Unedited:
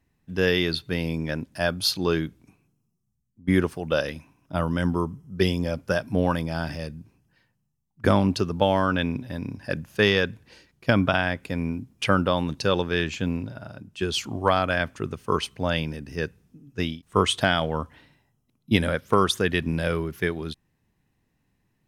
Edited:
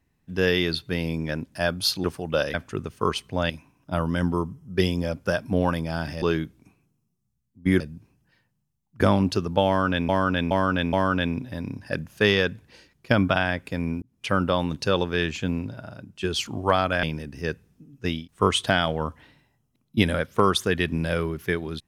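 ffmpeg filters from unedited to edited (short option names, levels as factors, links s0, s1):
-filter_complex "[0:a]asplit=11[s0][s1][s2][s3][s4][s5][s6][s7][s8][s9][s10];[s0]atrim=end=2.042[s11];[s1]atrim=start=3.618:end=4.122[s12];[s2]atrim=start=14.808:end=15.772[s13];[s3]atrim=start=4.118:end=6.842[s14];[s4]atrim=start=2.038:end=3.622[s15];[s5]atrim=start=6.838:end=9.132[s16];[s6]atrim=start=8.708:end=9.132[s17];[s7]atrim=start=8.708:end=9.132[s18];[s8]atrim=start=8.708:end=11.8,asetpts=PTS-STARTPTS,afade=t=out:st=3.088:d=0.004:c=hsin[s19];[s9]atrim=start=11.8:end=14.812,asetpts=PTS-STARTPTS,afade=t=in:d=0.58:c=qsin[s20];[s10]atrim=start=15.768[s21];[s11][s12]acrossfade=d=0.004:c1=hsin:c2=hsin[s22];[s22][s13]acrossfade=d=0.004:c1=hsin:c2=hsin[s23];[s23][s14]acrossfade=d=0.004:c1=hsin:c2=hsin[s24];[s24][s15]acrossfade=d=0.004:c1=hsin:c2=hsin[s25];[s25][s16]acrossfade=d=0.004:c1=hsin:c2=hsin[s26];[s26][s17]acrossfade=d=0.004:c1=hsin:c2=hsin[s27];[s27][s18]acrossfade=d=0.004:c1=hsin:c2=hsin[s28];[s19][s20]concat=n=2:v=0:a=1[s29];[s28][s29]acrossfade=d=0.004:c1=hsin:c2=hsin[s30];[s30][s21]acrossfade=d=0.004:c1=hsin:c2=hsin"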